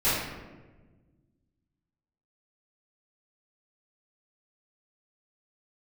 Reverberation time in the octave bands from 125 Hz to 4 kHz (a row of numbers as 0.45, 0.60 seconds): 2.3, 2.1, 1.5, 1.1, 1.0, 0.70 seconds